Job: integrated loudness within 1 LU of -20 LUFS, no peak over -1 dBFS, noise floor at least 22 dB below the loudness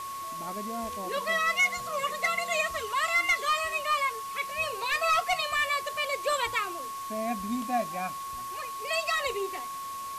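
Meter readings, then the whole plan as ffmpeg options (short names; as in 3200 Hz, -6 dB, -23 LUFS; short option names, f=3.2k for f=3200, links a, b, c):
steady tone 1100 Hz; tone level -35 dBFS; noise floor -38 dBFS; noise floor target -51 dBFS; loudness -29.0 LUFS; peak -16.5 dBFS; loudness target -20.0 LUFS
-> -af "bandreject=f=1.1k:w=30"
-af "afftdn=nr=13:nf=-38"
-af "volume=9dB"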